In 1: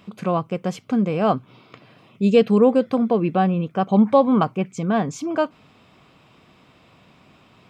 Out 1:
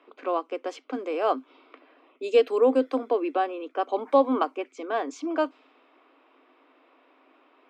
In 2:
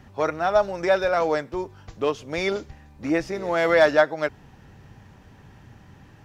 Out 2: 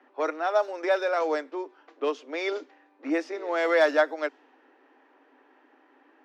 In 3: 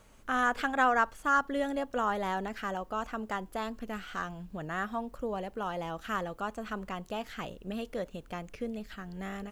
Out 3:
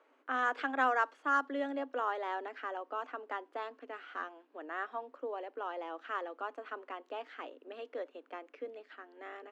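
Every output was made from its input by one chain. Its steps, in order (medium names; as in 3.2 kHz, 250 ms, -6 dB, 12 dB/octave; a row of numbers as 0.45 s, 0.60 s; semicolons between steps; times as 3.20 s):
level-controlled noise filter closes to 2.1 kHz, open at -15 dBFS; Chebyshev high-pass 260 Hz, order 8; trim -3.5 dB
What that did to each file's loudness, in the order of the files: -6.5 LU, -4.0 LU, -4.0 LU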